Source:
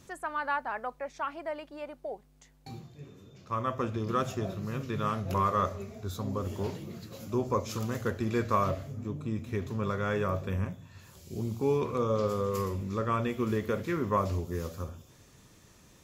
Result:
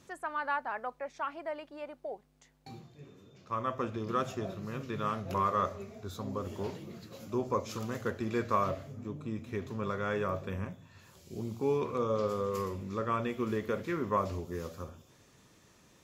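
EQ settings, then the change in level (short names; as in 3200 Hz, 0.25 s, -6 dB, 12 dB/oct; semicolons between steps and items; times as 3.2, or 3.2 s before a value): low shelf 110 Hz -10 dB; high shelf 6800 Hz -6 dB; -1.5 dB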